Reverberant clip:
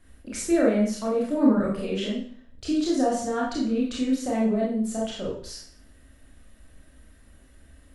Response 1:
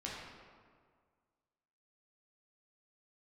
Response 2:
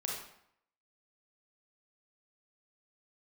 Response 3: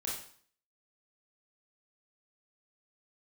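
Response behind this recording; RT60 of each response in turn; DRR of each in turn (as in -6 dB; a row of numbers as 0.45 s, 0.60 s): 3; 1.8 s, 0.70 s, 0.50 s; -5.5 dB, -2.5 dB, -5.0 dB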